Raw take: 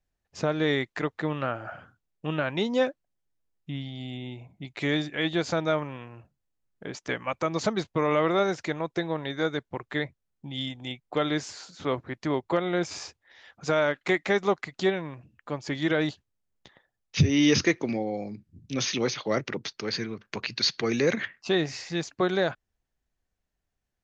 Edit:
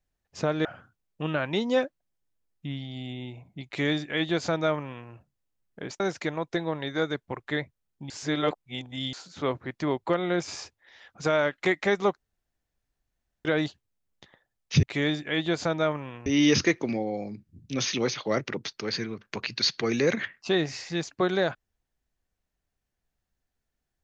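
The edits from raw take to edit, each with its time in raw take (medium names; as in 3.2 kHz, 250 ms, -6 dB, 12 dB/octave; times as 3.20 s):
0.65–1.69 s: delete
4.70–6.13 s: copy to 17.26 s
7.04–8.43 s: delete
10.53–11.56 s: reverse
14.60–15.88 s: room tone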